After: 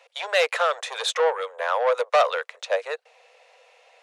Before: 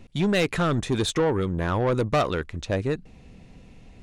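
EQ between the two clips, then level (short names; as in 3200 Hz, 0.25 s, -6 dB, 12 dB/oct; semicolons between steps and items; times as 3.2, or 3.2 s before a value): steep high-pass 480 Hz 96 dB/oct; high shelf 6700 Hz -8 dB; +5.0 dB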